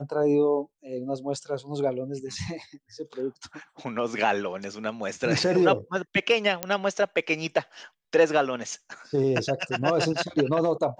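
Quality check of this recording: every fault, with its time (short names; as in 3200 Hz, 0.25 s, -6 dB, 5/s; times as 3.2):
6.63 pop -9 dBFS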